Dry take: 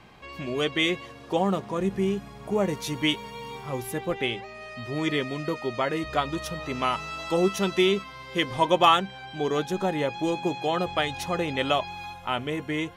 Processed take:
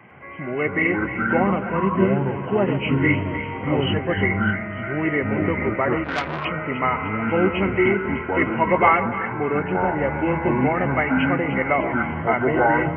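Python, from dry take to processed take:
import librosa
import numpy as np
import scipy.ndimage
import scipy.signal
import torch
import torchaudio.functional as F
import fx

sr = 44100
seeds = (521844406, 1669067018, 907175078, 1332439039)

p1 = fx.freq_compress(x, sr, knee_hz=1900.0, ratio=4.0)
p2 = scipy.signal.sosfilt(scipy.signal.butter(4, 100.0, 'highpass', fs=sr, output='sos'), p1)
p3 = fx.rider(p2, sr, range_db=5, speed_s=0.5)
p4 = p2 + (p3 * 10.0 ** (-3.0 / 20.0))
p5 = fx.air_absorb(p4, sr, metres=400.0, at=(9.09, 10.02))
p6 = fx.echo_split(p5, sr, split_hz=1200.0, low_ms=134, high_ms=300, feedback_pct=52, wet_db=-10.5)
p7 = fx.echo_pitch(p6, sr, ms=104, semitones=-6, count=2, db_per_echo=-3.0)
p8 = fx.transformer_sat(p7, sr, knee_hz=2400.0, at=(6.04, 6.45))
y = p8 * 10.0 ** (-1.5 / 20.0)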